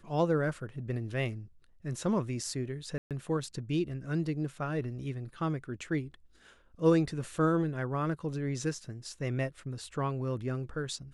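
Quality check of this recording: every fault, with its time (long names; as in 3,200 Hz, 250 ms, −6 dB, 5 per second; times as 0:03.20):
0:02.98–0:03.11: drop-out 127 ms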